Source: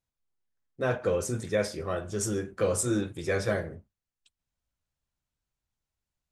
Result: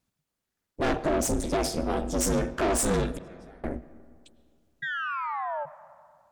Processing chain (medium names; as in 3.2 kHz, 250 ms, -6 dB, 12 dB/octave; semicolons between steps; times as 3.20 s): 0.93–2.25 s: peaking EQ 1.4 kHz -13.5 dB 1.6 oct; in parallel at +2 dB: peak limiter -23 dBFS, peak gain reduction 7.5 dB; 3.06–3.64 s: on the sum: inverted gate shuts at -20 dBFS, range -32 dB; 4.82–5.66 s: painted sound fall 700–1800 Hz -33 dBFS; valve stage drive 27 dB, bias 0.65; ring modulator 150 Hz; on a send at -16.5 dB: reverberation RT60 2.1 s, pre-delay 65 ms; on the sum: endings held to a fixed fall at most 270 dB/s; trim +8 dB